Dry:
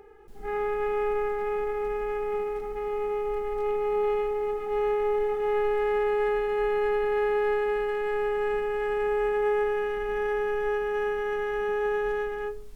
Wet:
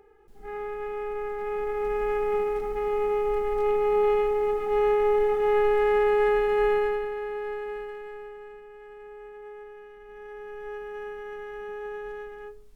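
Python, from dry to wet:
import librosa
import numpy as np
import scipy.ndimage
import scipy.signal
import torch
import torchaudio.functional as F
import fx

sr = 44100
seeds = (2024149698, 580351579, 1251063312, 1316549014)

y = fx.gain(x, sr, db=fx.line((1.09, -5.5), (2.06, 3.5), (6.72, 3.5), (7.17, -7.5), (7.78, -7.5), (8.57, -18.0), (9.97, -18.0), (10.77, -9.0)))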